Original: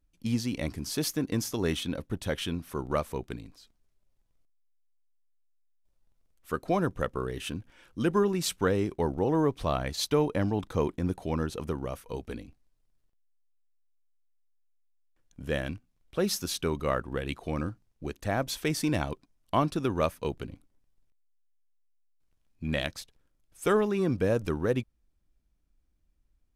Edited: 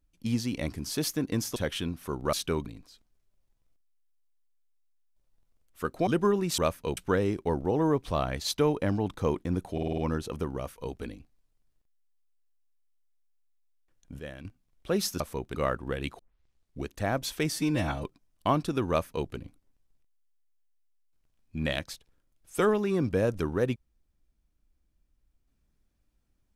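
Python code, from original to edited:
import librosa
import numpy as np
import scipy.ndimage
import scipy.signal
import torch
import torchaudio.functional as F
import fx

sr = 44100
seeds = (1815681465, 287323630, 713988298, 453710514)

y = fx.edit(x, sr, fx.cut(start_s=1.56, length_s=0.66),
    fx.swap(start_s=2.99, length_s=0.36, other_s=16.48, other_length_s=0.33),
    fx.cut(start_s=6.76, length_s=1.23),
    fx.stutter(start_s=11.26, slice_s=0.05, count=6),
    fx.clip_gain(start_s=15.47, length_s=0.26, db=-11.0),
    fx.tape_start(start_s=17.44, length_s=0.66),
    fx.stretch_span(start_s=18.77, length_s=0.35, factor=1.5),
    fx.duplicate(start_s=19.96, length_s=0.39, to_s=8.5), tone=tone)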